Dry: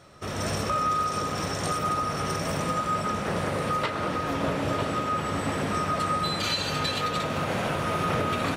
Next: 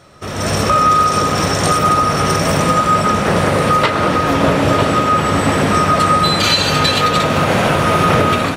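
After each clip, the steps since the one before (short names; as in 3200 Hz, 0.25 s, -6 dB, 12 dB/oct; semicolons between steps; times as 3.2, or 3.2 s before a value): AGC gain up to 7 dB; gain +7 dB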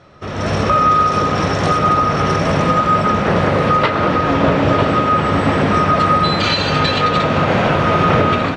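air absorption 160 m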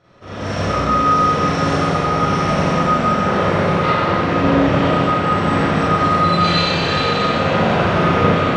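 Schroeder reverb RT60 1.8 s, combs from 32 ms, DRR -10 dB; gain -11.5 dB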